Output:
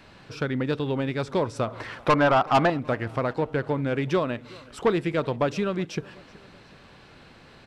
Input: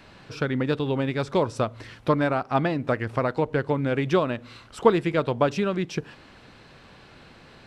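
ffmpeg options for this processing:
-filter_complex "[0:a]asettb=1/sr,asplit=3[s0][s1][s2];[s0]atrim=end=1.674[s3];[s1]atrim=start=1.67:end=2.7,asetpts=PTS-STARTPTS,afade=t=in:d=0.004:c=qsin,afade=t=out:st=1.026:d=0.004:c=qsin,equalizer=f=990:t=o:w=2.5:g=13[s4];[s2]atrim=start=2.696[s5];[s3][s4]acrossfade=d=0.004:c1=hsin:c2=qsin[s6];[s6][s5]acrossfade=d=0.004:c1=qsin:c2=hsin,asoftclip=type=tanh:threshold=0.237,asplit=2[s7][s8];[s8]aecho=0:1:375|750|1125:0.0668|0.0334|0.0167[s9];[s7][s9]amix=inputs=2:normalize=0,volume=0.891"

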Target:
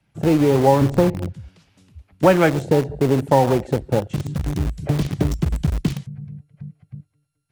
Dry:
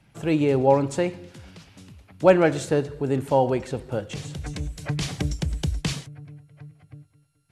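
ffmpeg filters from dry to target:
-filter_complex "[0:a]asettb=1/sr,asplit=3[s0][s1][s2];[s0]atrim=end=0.814[s3];[s1]atrim=start=0.81:end=1.34,asetpts=PTS-STARTPTS,afade=t=in:d=0.004:c=qsin,afade=t=out:st=0.526:d=0.004:c=qsin,aemphasis=mode=reproduction:type=riaa[s4];[s2]atrim=start=1.336[s5];[s3][s4]acrossfade=d=0.004:c1=hsin:c2=qsin[s6];[s6][s5]acrossfade=d=0.004:c1=qsin:c2=hsin,afwtdn=0.0447,acrossover=split=290|750|4900[s7][s8][s9][s10];[s7]acompressor=threshold=0.0316:ratio=4[s11];[s8]acompressor=threshold=0.0224:ratio=4[s12];[s9]acompressor=threshold=0.0355:ratio=4[s13];[s10]acompressor=threshold=0.00112:ratio=4[s14];[s11][s12][s13][s14]amix=inputs=4:normalize=0,asplit=2[s15][s16];[s16]acrusher=bits=4:mix=0:aa=0.000001,volume=0.355[s17];[s15][s17]amix=inputs=2:normalize=0,volume=2.82"

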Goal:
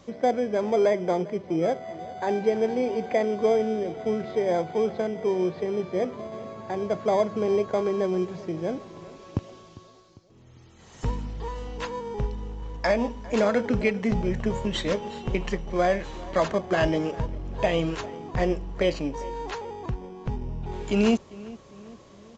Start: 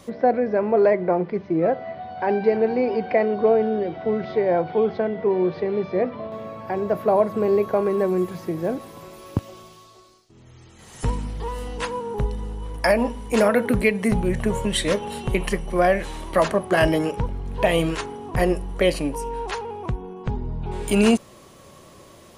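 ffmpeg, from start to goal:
-filter_complex "[0:a]asplit=2[s0][s1];[s1]adelay=400,lowpass=f=2000:p=1,volume=0.112,asplit=2[s2][s3];[s3]adelay=400,lowpass=f=2000:p=1,volume=0.54,asplit=2[s4][s5];[s5]adelay=400,lowpass=f=2000:p=1,volume=0.54,asplit=2[s6][s7];[s7]adelay=400,lowpass=f=2000:p=1,volume=0.54[s8];[s0][s2][s4][s6][s8]amix=inputs=5:normalize=0,asplit=2[s9][s10];[s10]acrusher=samples=16:mix=1:aa=0.000001,volume=0.266[s11];[s9][s11]amix=inputs=2:normalize=0,aresample=16000,aresample=44100,volume=0.501"

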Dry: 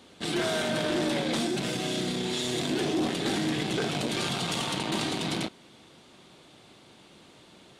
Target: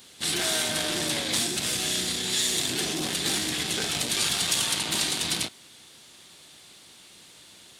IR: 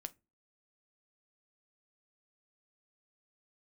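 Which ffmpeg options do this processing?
-filter_complex "[0:a]asplit=3[s0][s1][s2];[s1]asetrate=22050,aresample=44100,atempo=2,volume=0.447[s3];[s2]asetrate=52444,aresample=44100,atempo=0.840896,volume=0.2[s4];[s0][s3][s4]amix=inputs=3:normalize=0,crystalizer=i=8:c=0,volume=0.447"

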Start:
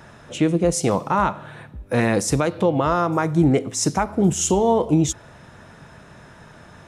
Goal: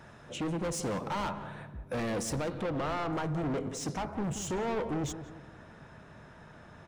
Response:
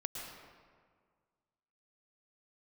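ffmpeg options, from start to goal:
-filter_complex "[0:a]volume=15,asoftclip=hard,volume=0.0668,asetnsamples=n=441:p=0,asendcmd='2.61 highshelf g -11',highshelf=f=5800:g=-4.5,asplit=2[s0][s1];[s1]adelay=177,lowpass=f=1200:p=1,volume=0.316,asplit=2[s2][s3];[s3]adelay=177,lowpass=f=1200:p=1,volume=0.46,asplit=2[s4][s5];[s5]adelay=177,lowpass=f=1200:p=1,volume=0.46,asplit=2[s6][s7];[s7]adelay=177,lowpass=f=1200:p=1,volume=0.46,asplit=2[s8][s9];[s9]adelay=177,lowpass=f=1200:p=1,volume=0.46[s10];[s0][s2][s4][s6][s8][s10]amix=inputs=6:normalize=0,volume=0.447"

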